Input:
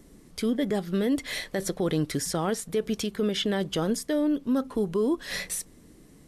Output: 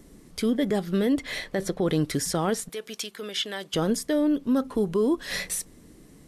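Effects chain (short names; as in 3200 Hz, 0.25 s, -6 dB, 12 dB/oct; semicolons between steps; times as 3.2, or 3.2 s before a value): 1.12–1.88 high shelf 4900 Hz -8 dB; 2.69–3.74 HPF 1400 Hz 6 dB/oct; gain +2 dB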